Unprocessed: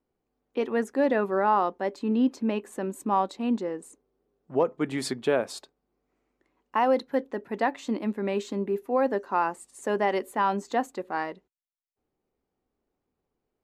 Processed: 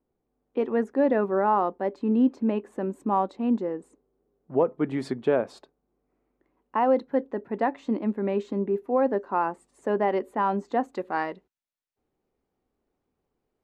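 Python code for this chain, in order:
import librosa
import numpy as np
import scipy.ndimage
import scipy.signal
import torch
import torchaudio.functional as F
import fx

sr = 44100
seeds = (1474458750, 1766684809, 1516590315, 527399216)

y = fx.lowpass(x, sr, hz=fx.steps((0.0, 1000.0), (10.93, 4000.0)), slope=6)
y = F.gain(torch.from_numpy(y), 2.5).numpy()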